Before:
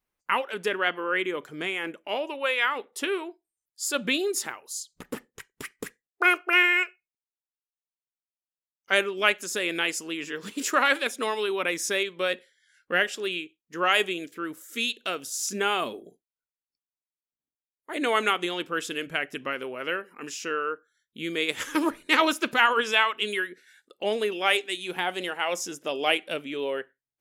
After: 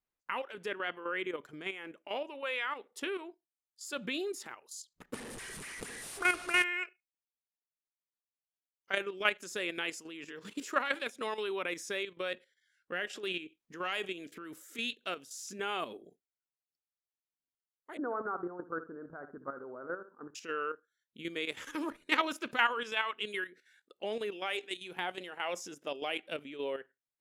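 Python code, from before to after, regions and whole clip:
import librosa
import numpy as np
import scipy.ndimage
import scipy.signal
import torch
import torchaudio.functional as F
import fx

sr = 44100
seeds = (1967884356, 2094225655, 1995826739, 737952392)

y = fx.chain(x, sr, fx.delta_mod(bps=64000, step_db=-25.5),
    fx.peak_eq(hz=9300.0, db=12.5, octaves=0.25), at=(5.14, 6.64))
y = fx.chain(y, sr, fx.transient(attack_db=-8, sustain_db=4),
    fx.band_squash(depth_pct=70), at=(13.13, 14.94))
y = fx.chain(y, sr, fx.steep_lowpass(hz=1500.0, slope=72),
    fx.room_flutter(wall_m=11.5, rt60_s=0.31), at=(17.97, 20.35))
y = fx.high_shelf(y, sr, hz=7900.0, db=-7.5)
y = fx.level_steps(y, sr, step_db=10)
y = y * librosa.db_to_amplitude(-5.0)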